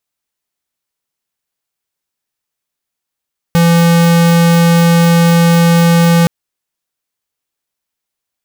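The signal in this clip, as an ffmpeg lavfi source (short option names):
-f lavfi -i "aevalsrc='0.398*(2*lt(mod(169*t,1),0.5)-1)':d=2.72:s=44100"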